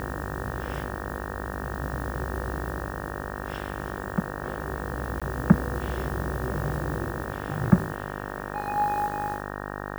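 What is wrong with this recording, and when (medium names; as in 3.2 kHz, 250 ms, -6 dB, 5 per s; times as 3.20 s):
buzz 50 Hz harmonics 37 -35 dBFS
5.20–5.22 s: dropout 16 ms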